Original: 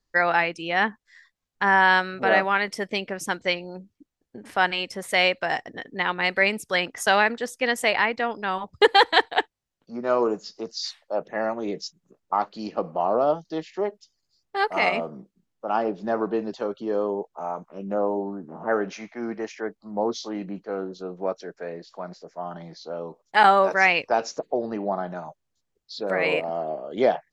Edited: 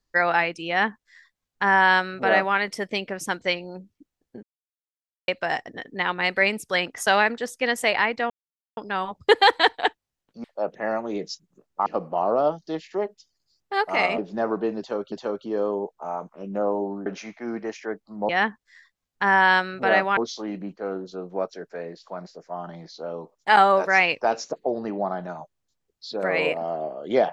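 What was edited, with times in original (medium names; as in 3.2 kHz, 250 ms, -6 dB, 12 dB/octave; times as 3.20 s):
0.69–2.57 s: copy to 20.04 s
4.43–5.28 s: mute
8.30 s: insert silence 0.47 s
9.97–10.97 s: delete
12.39–12.69 s: delete
15.01–15.88 s: delete
16.48–16.82 s: loop, 2 plays
18.42–18.81 s: delete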